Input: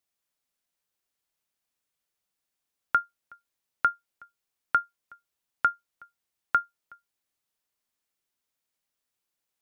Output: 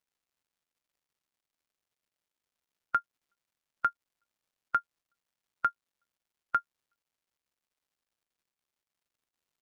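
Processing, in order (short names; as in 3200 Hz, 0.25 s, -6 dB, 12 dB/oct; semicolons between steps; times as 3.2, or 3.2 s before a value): per-bin expansion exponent 2; comb 5.9 ms, depth 41%; crackle 360/s -68 dBFS; gain -3.5 dB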